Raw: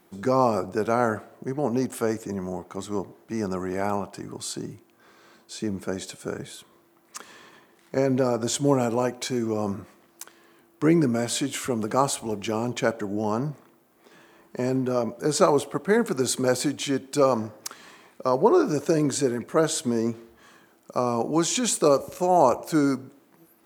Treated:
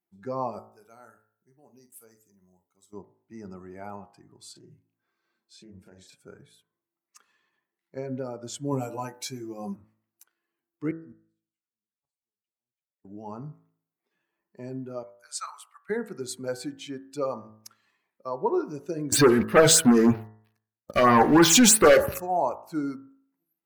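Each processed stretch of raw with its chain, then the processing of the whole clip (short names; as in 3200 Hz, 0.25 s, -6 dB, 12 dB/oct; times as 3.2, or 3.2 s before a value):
0.59–2.93 pre-emphasis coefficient 0.8 + doubler 44 ms -8.5 dB
4.52–6.16 doubler 33 ms -3 dB + compressor 2.5:1, threshold -31 dBFS + Doppler distortion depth 0.17 ms
8.71–9.76 bell 13000 Hz +8.5 dB 1.7 oct + doubler 15 ms -3.5 dB
10.91–13.05 negative-ratio compressor -28 dBFS, ratio -0.5 + flipped gate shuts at -24 dBFS, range -41 dB
15.03–15.9 HPF 1100 Hz 24 dB/oct + dynamic EQ 8700 Hz, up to +4 dB, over -43 dBFS, Q 1.3
19.12–22.2 sample leveller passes 5 + dynamic EQ 1400 Hz, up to +6 dB, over -28 dBFS, Q 1.1 + LFO notch sine 3.1 Hz 930–7800 Hz
whole clip: per-bin expansion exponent 1.5; de-hum 54.31 Hz, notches 36; gain -2.5 dB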